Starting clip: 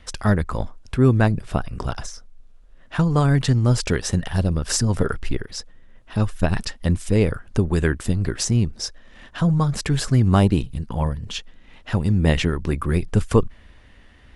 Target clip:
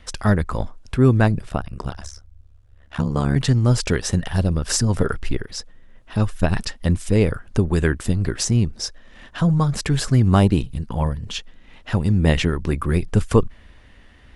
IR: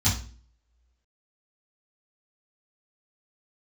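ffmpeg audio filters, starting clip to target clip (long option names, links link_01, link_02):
-filter_complex "[0:a]asettb=1/sr,asplit=3[link_01][link_02][link_03];[link_01]atrim=end=1.494[link_04];[link_02]atrim=start=1.49:end=3.36,asetpts=PTS-STARTPTS,afade=type=in:duration=0.004:curve=qsin,afade=type=out:start_time=1.866:duration=0.004:curve=qsin,tremolo=f=70:d=1[link_05];[link_03]atrim=start=3.356[link_06];[link_04][link_05]acrossfade=duration=0.004:curve1=hsin:curve2=qsin[link_07];[link_07][link_06]acrossfade=duration=0.004:curve1=qsin:curve2=hsin,volume=1dB"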